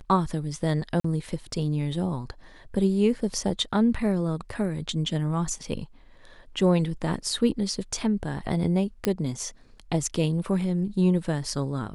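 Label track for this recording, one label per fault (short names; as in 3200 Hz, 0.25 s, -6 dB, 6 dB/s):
1.000000	1.040000	gap 44 ms
9.050000	9.050000	pop -10 dBFS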